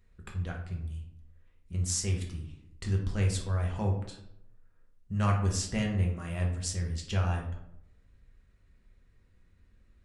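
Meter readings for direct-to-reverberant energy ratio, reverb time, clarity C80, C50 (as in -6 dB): -0.5 dB, 0.75 s, 9.5 dB, 5.5 dB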